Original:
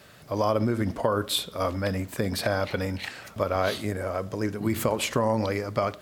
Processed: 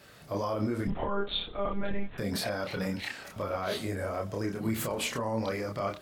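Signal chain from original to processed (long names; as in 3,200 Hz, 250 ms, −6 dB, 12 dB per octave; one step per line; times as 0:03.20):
0:00.87–0:02.18: one-pitch LPC vocoder at 8 kHz 200 Hz
brickwall limiter −19 dBFS, peak gain reduction 9.5 dB
multi-voice chorus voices 4, 0.37 Hz, delay 28 ms, depth 3.3 ms
level +1 dB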